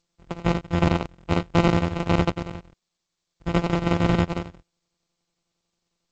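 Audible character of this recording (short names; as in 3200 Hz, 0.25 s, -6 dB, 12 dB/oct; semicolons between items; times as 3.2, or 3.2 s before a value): a buzz of ramps at a fixed pitch in blocks of 256 samples; chopped level 11 Hz, depth 65%, duty 70%; aliases and images of a low sample rate 1700 Hz, jitter 0%; G.722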